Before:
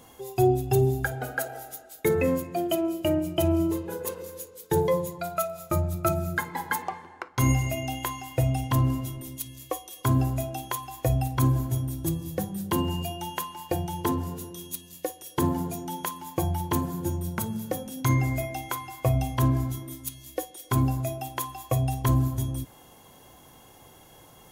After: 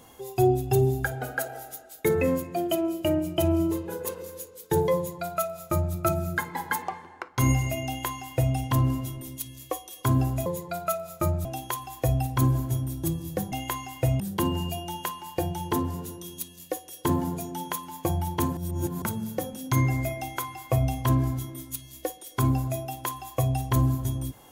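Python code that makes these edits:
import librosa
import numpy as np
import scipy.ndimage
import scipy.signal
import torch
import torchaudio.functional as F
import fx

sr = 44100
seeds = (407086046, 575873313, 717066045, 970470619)

y = fx.edit(x, sr, fx.duplicate(start_s=4.96, length_s=0.99, to_s=10.46),
    fx.duplicate(start_s=7.87, length_s=0.68, to_s=12.53),
    fx.reverse_span(start_s=16.9, length_s=0.45), tone=tone)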